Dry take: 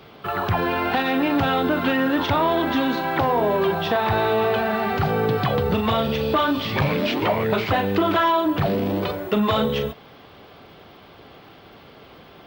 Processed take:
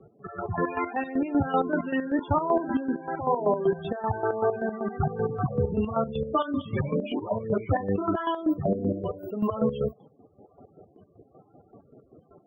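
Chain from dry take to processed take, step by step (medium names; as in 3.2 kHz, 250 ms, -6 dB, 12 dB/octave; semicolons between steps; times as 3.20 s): loudest bins only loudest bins 16; rotary cabinet horn 1.1 Hz; square tremolo 5.2 Hz, depth 65%, duty 40%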